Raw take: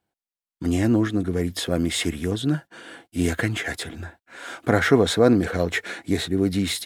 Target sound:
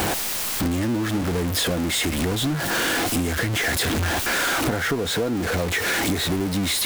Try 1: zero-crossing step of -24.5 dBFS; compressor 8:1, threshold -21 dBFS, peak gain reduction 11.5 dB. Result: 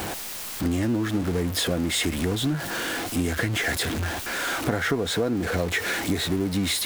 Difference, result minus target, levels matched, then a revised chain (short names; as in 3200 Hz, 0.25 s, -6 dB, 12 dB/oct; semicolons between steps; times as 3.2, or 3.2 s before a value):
zero-crossing step: distortion -6 dB
zero-crossing step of -16 dBFS; compressor 8:1, threshold -21 dBFS, peak gain reduction 12.5 dB